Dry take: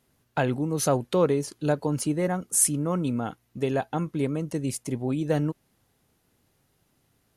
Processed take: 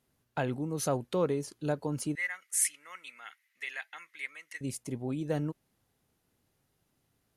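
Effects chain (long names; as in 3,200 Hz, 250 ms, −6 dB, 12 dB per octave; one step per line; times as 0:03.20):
0:02.15–0:04.61: high-pass with resonance 2,000 Hz, resonance Q 7.4
level −7 dB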